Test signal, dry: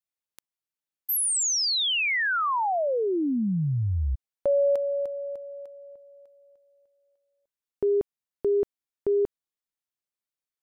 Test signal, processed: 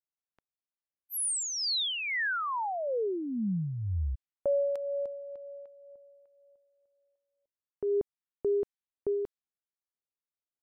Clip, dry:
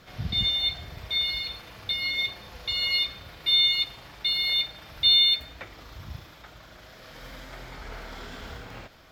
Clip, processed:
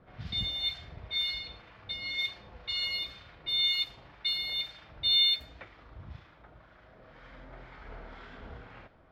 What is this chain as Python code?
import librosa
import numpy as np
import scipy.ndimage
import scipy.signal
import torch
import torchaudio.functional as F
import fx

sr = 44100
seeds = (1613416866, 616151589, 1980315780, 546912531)

y = fx.env_lowpass(x, sr, base_hz=1500.0, full_db=-22.0)
y = fx.harmonic_tremolo(y, sr, hz=2.0, depth_pct=50, crossover_hz=990.0)
y = F.gain(torch.from_numpy(y), -4.0).numpy()